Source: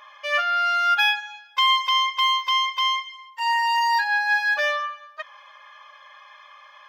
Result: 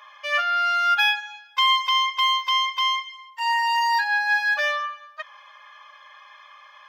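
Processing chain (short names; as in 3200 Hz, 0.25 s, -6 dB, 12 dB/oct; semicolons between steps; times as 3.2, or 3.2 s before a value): HPF 580 Hz 12 dB/oct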